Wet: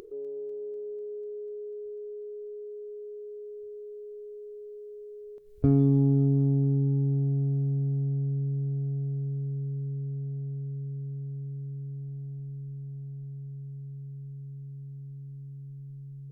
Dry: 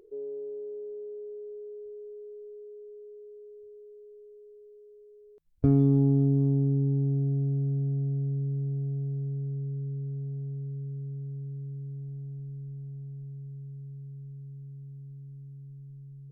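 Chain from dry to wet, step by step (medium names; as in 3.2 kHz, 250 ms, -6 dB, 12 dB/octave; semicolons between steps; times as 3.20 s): upward compressor, threshold -39 dBFS; on a send: thinning echo 247 ms, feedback 81%, high-pass 250 Hz, level -19 dB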